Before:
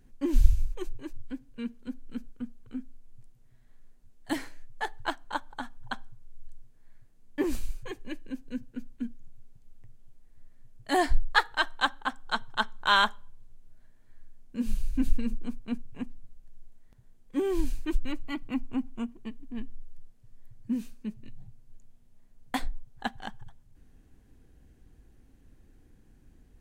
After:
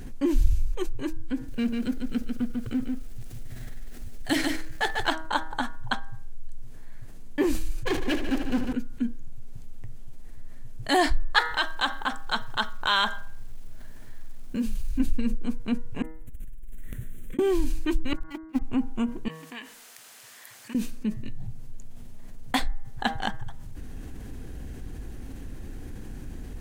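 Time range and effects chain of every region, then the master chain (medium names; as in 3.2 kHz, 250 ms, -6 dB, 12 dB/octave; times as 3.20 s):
1.48–5.09 s: companding laws mixed up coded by mu + peaking EQ 990 Hz -7 dB 0.52 oct + delay 145 ms -6 dB
7.85–8.73 s: treble shelf 7 kHz -9 dB + power-law waveshaper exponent 0.5 + multi-head delay 75 ms, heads all three, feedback 47%, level -11.5 dB
11.39–15.00 s: compression 1.5:1, threshold -39 dBFS + companded quantiser 8-bit
16.02–17.39 s: treble shelf 7.2 kHz +8.5 dB + compressor with a negative ratio -48 dBFS + static phaser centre 2.1 kHz, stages 4
18.13–18.62 s: jump at every zero crossing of -37 dBFS + gate -27 dBFS, range -58 dB
19.28–20.75 s: high-pass 1.2 kHz + compression 3:1, threshold -58 dBFS
whole clip: de-hum 159.4 Hz, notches 13; dynamic bell 3.6 kHz, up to +4 dB, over -44 dBFS, Q 0.95; level flattener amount 50%; trim -3 dB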